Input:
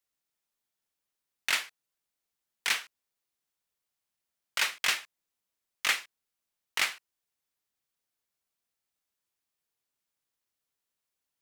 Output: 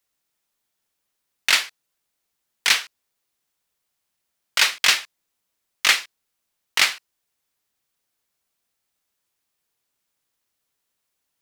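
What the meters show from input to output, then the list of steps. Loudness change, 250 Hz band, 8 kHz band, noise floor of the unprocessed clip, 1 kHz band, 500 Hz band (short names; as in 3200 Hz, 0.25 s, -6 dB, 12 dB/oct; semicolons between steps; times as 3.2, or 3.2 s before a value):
+10.5 dB, +8.5 dB, +10.5 dB, under -85 dBFS, +8.5 dB, +8.5 dB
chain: dynamic EQ 4600 Hz, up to +5 dB, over -44 dBFS, Q 1.2; gain +8.5 dB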